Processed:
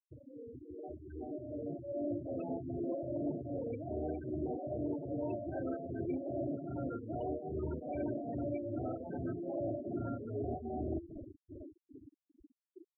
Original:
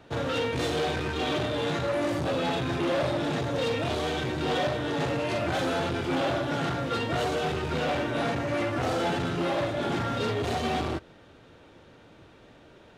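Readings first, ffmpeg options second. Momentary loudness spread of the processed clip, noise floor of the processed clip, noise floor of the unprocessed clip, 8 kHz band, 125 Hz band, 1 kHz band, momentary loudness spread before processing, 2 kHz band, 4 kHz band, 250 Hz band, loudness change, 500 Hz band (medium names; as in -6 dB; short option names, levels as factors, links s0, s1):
12 LU, under -85 dBFS, -54 dBFS, under -35 dB, -11.5 dB, -17.0 dB, 2 LU, -29.5 dB, under -40 dB, -7.5 dB, -11.0 dB, -11.0 dB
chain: -filter_complex "[0:a]lowpass=2100,asplit=2[s0][s1];[s1]adelay=90,highpass=300,lowpass=3400,asoftclip=type=hard:threshold=0.0447,volume=0.0355[s2];[s0][s2]amix=inputs=2:normalize=0,tremolo=f=2.5:d=0.77,adynamicequalizer=threshold=0.00708:dfrequency=830:dqfactor=2.1:tfrequency=830:tqfactor=2.1:attack=5:release=100:ratio=0.375:range=1.5:mode=cutabove:tftype=bell,asoftclip=type=tanh:threshold=0.0668,areverse,acompressor=threshold=0.00501:ratio=12,areverse,equalizer=f=1200:t=o:w=1.1:g=-8.5,aecho=1:1:3.1:0.42,bandreject=f=85.22:t=h:w=4,bandreject=f=170.44:t=h:w=4,bandreject=f=255.66:t=h:w=4,bandreject=f=340.88:t=h:w=4,bandreject=f=426.1:t=h:w=4,bandreject=f=511.32:t=h:w=4,bandreject=f=596.54:t=h:w=4,bandreject=f=681.76:t=h:w=4,bandreject=f=766.98:t=h:w=4,bandreject=f=852.2:t=h:w=4,bandreject=f=937.42:t=h:w=4,bandreject=f=1022.64:t=h:w=4,bandreject=f=1107.86:t=h:w=4,bandreject=f=1193.08:t=h:w=4,bandreject=f=1278.3:t=h:w=4,bandreject=f=1363.52:t=h:w=4,bandreject=f=1448.74:t=h:w=4,bandreject=f=1533.96:t=h:w=4,bandreject=f=1619.18:t=h:w=4,bandreject=f=1704.4:t=h:w=4,bandreject=f=1789.62:t=h:w=4,bandreject=f=1874.84:t=h:w=4,bandreject=f=1960.06:t=h:w=4,bandreject=f=2045.28:t=h:w=4,bandreject=f=2130.5:t=h:w=4,dynaudnorm=f=150:g=21:m=2.37,afftfilt=real='re*gte(hypot(re,im),0.0141)':imag='im*gte(hypot(re,im),0.0141)':win_size=1024:overlap=0.75,volume=1.68"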